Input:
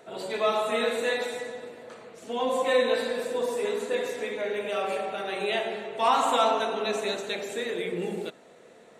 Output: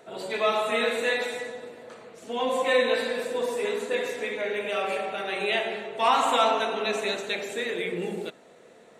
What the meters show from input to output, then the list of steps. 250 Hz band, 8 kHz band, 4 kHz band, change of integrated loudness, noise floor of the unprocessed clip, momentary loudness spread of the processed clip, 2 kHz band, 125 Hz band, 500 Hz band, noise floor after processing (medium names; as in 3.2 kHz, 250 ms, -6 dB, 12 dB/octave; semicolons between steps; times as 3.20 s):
0.0 dB, +0.5 dB, +2.5 dB, +1.0 dB, -53 dBFS, 13 LU, +4.0 dB, no reading, 0.0 dB, -53 dBFS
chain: dynamic bell 2.3 kHz, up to +5 dB, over -43 dBFS, Q 1.2